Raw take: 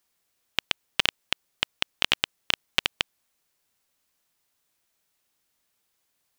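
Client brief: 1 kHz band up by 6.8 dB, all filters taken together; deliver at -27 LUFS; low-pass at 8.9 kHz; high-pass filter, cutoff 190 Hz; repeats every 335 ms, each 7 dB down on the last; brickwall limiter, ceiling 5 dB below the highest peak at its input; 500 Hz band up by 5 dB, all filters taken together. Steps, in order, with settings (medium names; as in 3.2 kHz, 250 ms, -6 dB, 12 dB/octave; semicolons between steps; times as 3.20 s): high-pass 190 Hz; low-pass 8.9 kHz; peaking EQ 500 Hz +4 dB; peaking EQ 1 kHz +7.5 dB; peak limiter -5 dBFS; feedback delay 335 ms, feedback 45%, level -7 dB; trim +4.5 dB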